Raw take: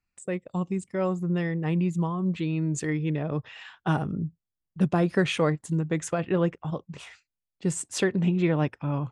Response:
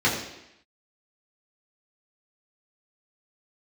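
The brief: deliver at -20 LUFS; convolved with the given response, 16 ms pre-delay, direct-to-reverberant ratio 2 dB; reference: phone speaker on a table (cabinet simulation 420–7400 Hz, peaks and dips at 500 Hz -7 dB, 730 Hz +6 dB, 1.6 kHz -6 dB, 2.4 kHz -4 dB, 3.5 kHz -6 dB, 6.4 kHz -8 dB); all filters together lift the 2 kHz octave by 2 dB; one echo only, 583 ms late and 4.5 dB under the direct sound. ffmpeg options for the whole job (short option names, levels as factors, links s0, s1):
-filter_complex "[0:a]equalizer=f=2000:t=o:g=7.5,aecho=1:1:583:0.596,asplit=2[s0][s1];[1:a]atrim=start_sample=2205,adelay=16[s2];[s1][s2]afir=irnorm=-1:irlink=0,volume=0.126[s3];[s0][s3]amix=inputs=2:normalize=0,highpass=f=420:w=0.5412,highpass=f=420:w=1.3066,equalizer=f=500:t=q:w=4:g=-7,equalizer=f=730:t=q:w=4:g=6,equalizer=f=1600:t=q:w=4:g=-6,equalizer=f=2400:t=q:w=4:g=-4,equalizer=f=3500:t=q:w=4:g=-6,equalizer=f=6400:t=q:w=4:g=-8,lowpass=f=7400:w=0.5412,lowpass=f=7400:w=1.3066,volume=3.16"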